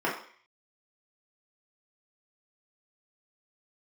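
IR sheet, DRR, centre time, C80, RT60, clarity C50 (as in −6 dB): −6.5 dB, 32 ms, 10.0 dB, 0.50 s, 6.5 dB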